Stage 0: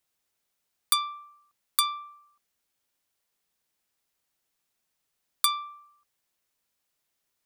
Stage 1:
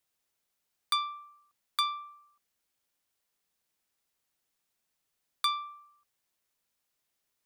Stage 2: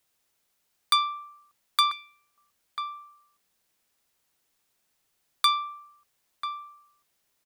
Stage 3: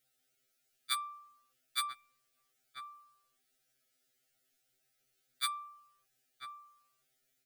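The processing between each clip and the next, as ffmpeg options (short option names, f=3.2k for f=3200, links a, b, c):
-filter_complex "[0:a]acrossover=split=5000[a][b];[b]acompressor=threshold=-36dB:ratio=4:attack=1:release=60[c];[a][c]amix=inputs=2:normalize=0,volume=-2dB"
-filter_complex "[0:a]asplit=2[a][b];[b]adelay=991.3,volume=-7dB,highshelf=f=4k:g=-22.3[c];[a][c]amix=inputs=2:normalize=0,volume=7dB"
-af "asuperstop=centerf=1000:order=12:qfactor=2.4,afftfilt=real='re*2.45*eq(mod(b,6),0)':imag='im*2.45*eq(mod(b,6),0)':win_size=2048:overlap=0.75,volume=-1.5dB"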